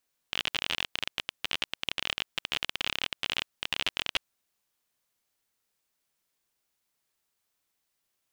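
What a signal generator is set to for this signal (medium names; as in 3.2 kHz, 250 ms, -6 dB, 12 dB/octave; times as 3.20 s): random clicks 31 per s -11.5 dBFS 3.90 s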